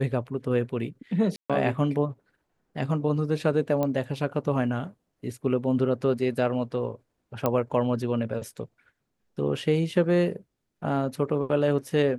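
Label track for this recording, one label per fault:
1.360000	1.500000	drop-out 136 ms
3.830000	3.830000	click −15 dBFS
7.460000	7.460000	click −11 dBFS

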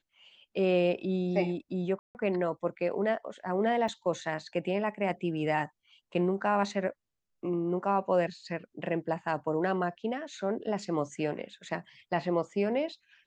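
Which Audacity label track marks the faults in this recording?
1.990000	2.150000	drop-out 159 ms
3.880000	3.880000	drop-out 4.2 ms

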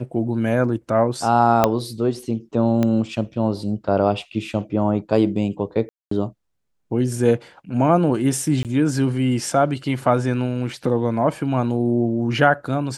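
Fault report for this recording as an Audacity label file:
1.640000	1.640000	click −2 dBFS
2.830000	2.830000	click −9 dBFS
5.890000	6.110000	drop-out 224 ms
8.630000	8.650000	drop-out 18 ms

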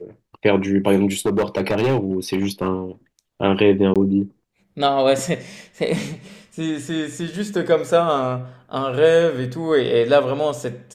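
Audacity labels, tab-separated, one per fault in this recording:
1.260000	2.680000	clipping −14 dBFS
3.940000	3.960000	drop-out 17 ms

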